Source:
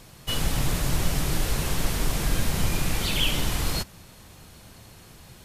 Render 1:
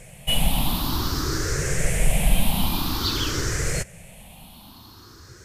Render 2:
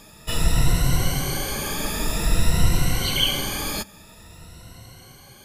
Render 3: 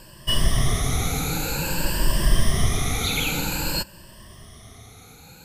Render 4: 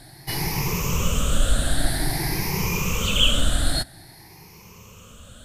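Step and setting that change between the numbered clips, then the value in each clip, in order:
rippled gain that drifts along the octave scale, ripples per octave: 0.51, 2, 1.3, 0.79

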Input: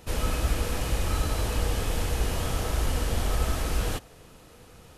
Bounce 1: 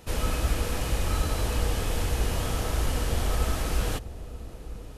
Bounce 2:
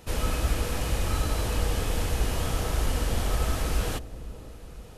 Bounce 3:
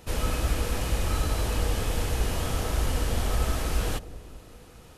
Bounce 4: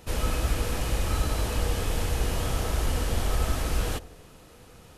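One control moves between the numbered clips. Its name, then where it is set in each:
delay with a low-pass on its return, delay time: 934, 509, 199, 73 milliseconds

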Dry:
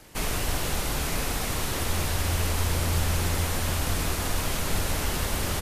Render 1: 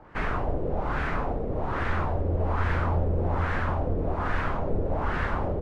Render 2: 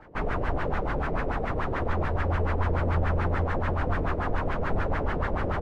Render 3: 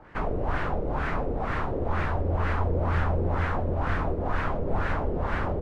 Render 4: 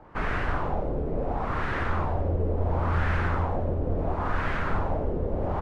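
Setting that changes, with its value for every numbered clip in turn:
auto-filter low-pass, speed: 1.2, 6.9, 2.1, 0.72 Hertz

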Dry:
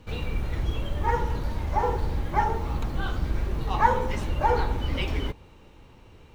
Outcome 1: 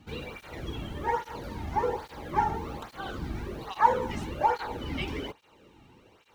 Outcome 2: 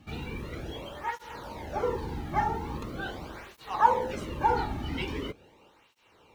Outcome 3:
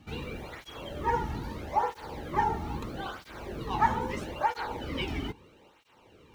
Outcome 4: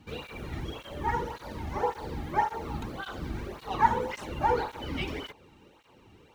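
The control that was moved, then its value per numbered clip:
through-zero flanger with one copy inverted, nulls at: 1.2, 0.42, 0.77, 1.8 Hertz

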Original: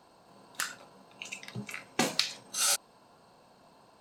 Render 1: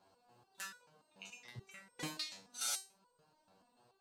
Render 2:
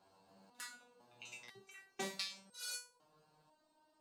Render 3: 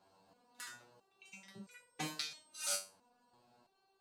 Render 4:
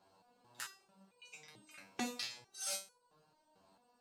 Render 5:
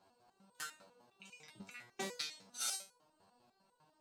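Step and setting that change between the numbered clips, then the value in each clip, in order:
step-sequenced resonator, speed: 6.9, 2, 3, 4.5, 10 Hertz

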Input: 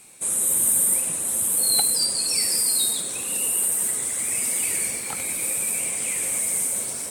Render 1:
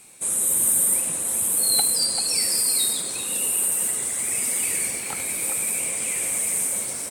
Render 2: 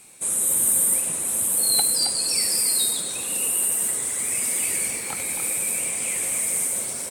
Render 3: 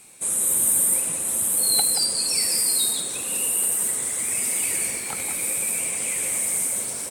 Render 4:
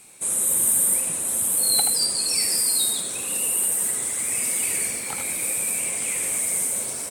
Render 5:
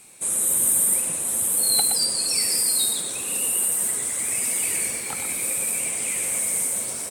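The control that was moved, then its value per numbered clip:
far-end echo of a speakerphone, delay time: 390, 270, 180, 80, 120 milliseconds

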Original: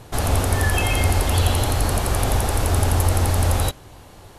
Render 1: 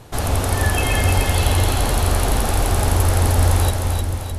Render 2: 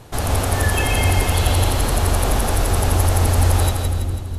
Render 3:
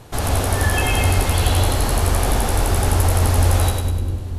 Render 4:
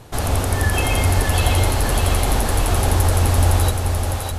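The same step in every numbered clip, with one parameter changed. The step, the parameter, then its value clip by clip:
echo with a time of its own for lows and highs, highs: 306, 165, 100, 606 milliseconds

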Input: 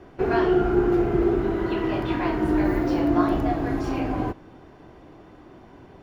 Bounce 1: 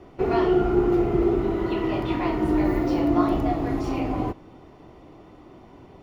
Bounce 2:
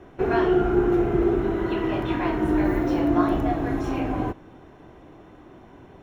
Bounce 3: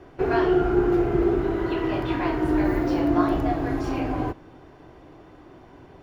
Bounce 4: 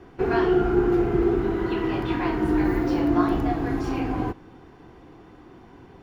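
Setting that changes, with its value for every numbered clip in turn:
notch filter, centre frequency: 1,600, 4,700, 210, 610 Hertz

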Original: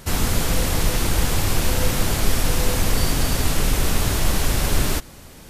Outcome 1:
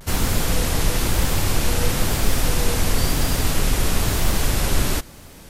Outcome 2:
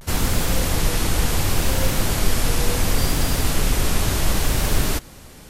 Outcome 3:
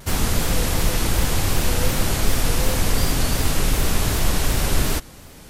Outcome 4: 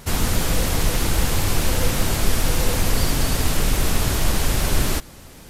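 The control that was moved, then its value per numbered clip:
pitch vibrato, speed: 1, 0.7, 2.7, 15 Hertz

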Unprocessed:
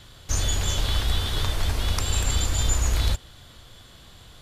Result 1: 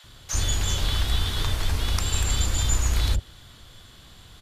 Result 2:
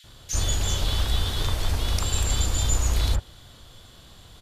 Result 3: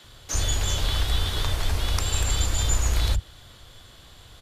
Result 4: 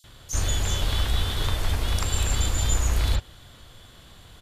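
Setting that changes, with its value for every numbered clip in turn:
multiband delay without the direct sound, split: 580, 1,900, 200, 5,000 Hertz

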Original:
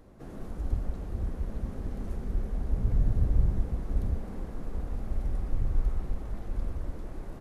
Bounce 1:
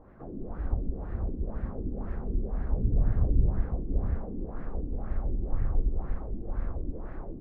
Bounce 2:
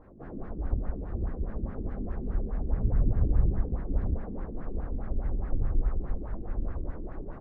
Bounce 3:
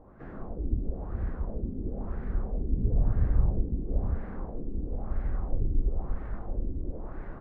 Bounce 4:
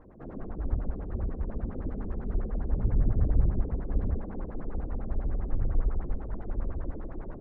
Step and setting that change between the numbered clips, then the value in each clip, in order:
auto-filter low-pass, speed: 2, 4.8, 1, 10 Hertz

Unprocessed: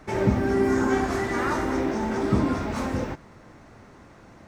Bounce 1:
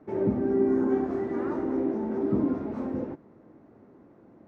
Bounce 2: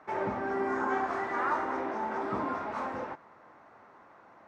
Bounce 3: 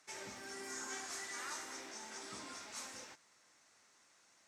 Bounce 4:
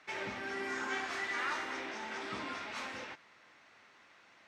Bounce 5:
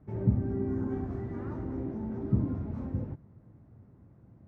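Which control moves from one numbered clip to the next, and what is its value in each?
resonant band-pass, frequency: 320, 1,000, 7,500, 2,900, 110 Hertz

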